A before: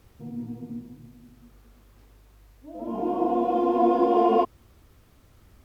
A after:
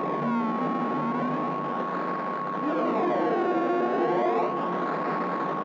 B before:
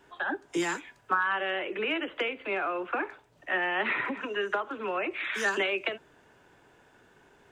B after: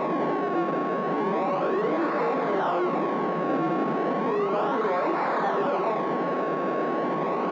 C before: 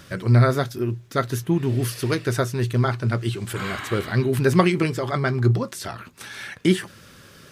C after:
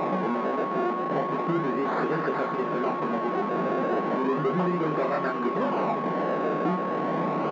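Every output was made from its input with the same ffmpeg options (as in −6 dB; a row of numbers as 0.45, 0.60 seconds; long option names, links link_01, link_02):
-filter_complex "[0:a]aeval=exprs='val(0)+0.5*0.0794*sgn(val(0))':channel_layout=same,asplit=2[link_01][link_02];[link_02]adelay=39,volume=-10dB[link_03];[link_01][link_03]amix=inputs=2:normalize=0,flanger=delay=19.5:depth=4.2:speed=0.7,acrusher=samples=28:mix=1:aa=0.000001:lfo=1:lforange=28:lforate=0.34,aeval=exprs='val(0)+0.02*(sin(2*PI*60*n/s)+sin(2*PI*2*60*n/s)/2+sin(2*PI*3*60*n/s)/3+sin(2*PI*4*60*n/s)/4+sin(2*PI*5*60*n/s)/5)':channel_layout=same,acompressor=threshold=-26dB:ratio=6,aeval=exprs='val(0)+0.0112*sin(2*PI*1100*n/s)':channel_layout=same,highshelf=frequency=4700:gain=-6.5,asplit=2[link_04][link_05];[link_05]highpass=frequency=720:poles=1,volume=19dB,asoftclip=type=tanh:threshold=-17.5dB[link_06];[link_04][link_06]amix=inputs=2:normalize=0,lowpass=frequency=1100:poles=1,volume=-6dB,afftfilt=real='re*between(b*sr/4096,140,7400)':imag='im*between(b*sr/4096,140,7400)':win_size=4096:overlap=0.75,aemphasis=mode=reproduction:type=75kf,asplit=2[link_07][link_08];[link_08]aecho=0:1:532|1064|1596|2128|2660|3192:0.224|0.123|0.0677|0.0372|0.0205|0.0113[link_09];[link_07][link_09]amix=inputs=2:normalize=0,volume=2.5dB"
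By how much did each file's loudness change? −3.0, +4.5, −4.0 LU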